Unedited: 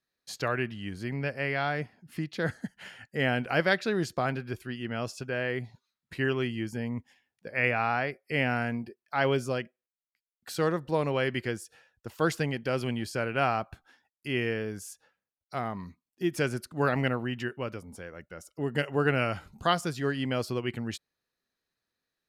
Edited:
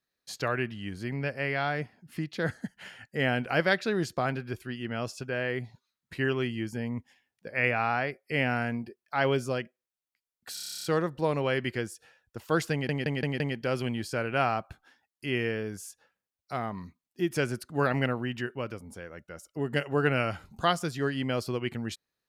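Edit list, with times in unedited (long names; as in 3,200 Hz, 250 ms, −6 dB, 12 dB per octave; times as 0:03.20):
0:10.54: stutter 0.03 s, 11 plays
0:12.42: stutter 0.17 s, 5 plays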